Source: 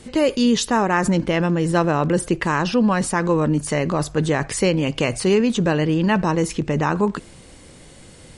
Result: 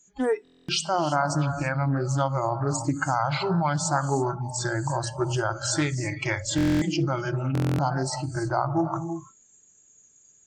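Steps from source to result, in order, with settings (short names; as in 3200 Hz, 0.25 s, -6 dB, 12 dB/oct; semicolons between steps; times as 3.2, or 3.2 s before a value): low shelf 100 Hz -11 dB; notches 50/100/150/200/250/300/350/400/450/500 Hz; non-linear reverb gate 0.29 s rising, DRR 8 dB; compressor 3:1, threshold -19 dBFS, peak gain reduction 5 dB; spectral noise reduction 28 dB; varispeed -20%; stuck buffer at 0.43/6.56/7.53, samples 1024, times 10; Doppler distortion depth 0.18 ms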